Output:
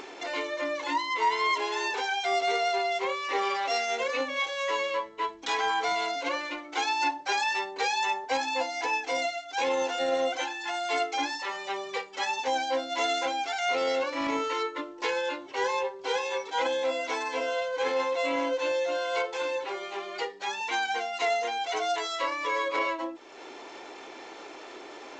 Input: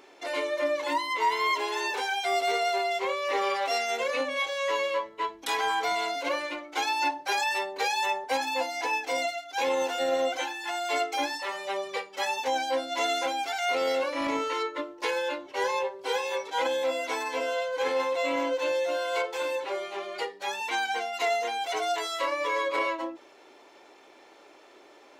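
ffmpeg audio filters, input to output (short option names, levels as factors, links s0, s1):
-af "bandreject=f=580:w=13,acompressor=mode=upward:threshold=0.0224:ratio=2.5" -ar 16000 -c:a g722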